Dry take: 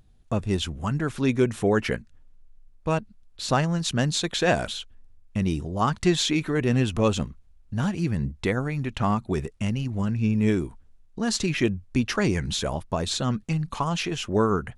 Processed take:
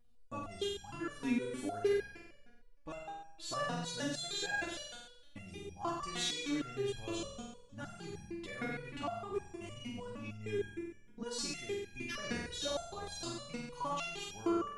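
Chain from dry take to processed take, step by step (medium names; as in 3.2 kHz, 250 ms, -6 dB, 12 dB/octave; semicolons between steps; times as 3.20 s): flutter echo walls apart 8.1 m, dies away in 1.1 s; resonator arpeggio 6.5 Hz 240–820 Hz; trim +1.5 dB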